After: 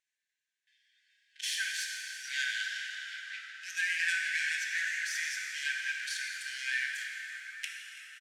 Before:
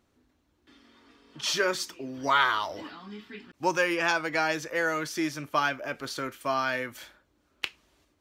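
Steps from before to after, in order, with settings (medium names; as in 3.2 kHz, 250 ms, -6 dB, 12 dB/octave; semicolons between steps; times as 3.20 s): tracing distortion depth 0.16 ms; resonant high shelf 6.1 kHz +6.5 dB, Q 1.5; gain riding 2 s; waveshaping leveller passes 3; in parallel at -1 dB: peak limiter -13.5 dBFS, peak gain reduction 8.5 dB; on the sum: compression 1.5:1, threshold -40 dBFS, peak gain reduction 11.5 dB; brick-wall FIR high-pass 1.5 kHz; distance through air 76 m; on a send: frequency-shifting echo 332 ms, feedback 57%, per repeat -68 Hz, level -19.5 dB; on the sum: plate-style reverb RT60 4.2 s, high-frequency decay 0.7×, DRR -1 dB; trim -5.5 dB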